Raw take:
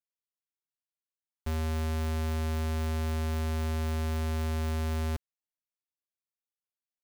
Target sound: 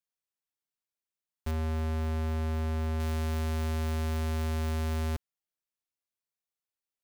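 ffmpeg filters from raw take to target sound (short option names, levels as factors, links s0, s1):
-filter_complex "[0:a]asettb=1/sr,asplit=3[s0][s1][s2];[s0]atrim=end=1.514[s3];[s1]atrim=start=1.51:end=3,asetpts=PTS-STARTPTS,afade=t=in:d=0.004:c=qsin,afade=t=out:st=1.486:d=0.004:c=qsin,highshelf=f=2800:g=-8.5[s4];[s2]atrim=start=2.996[s5];[s3][s4]acrossfade=d=0.004:c1=hsin:c2=qsin[s6];[s6][s5]acrossfade=d=0.004:c1=qsin:c2=hsin"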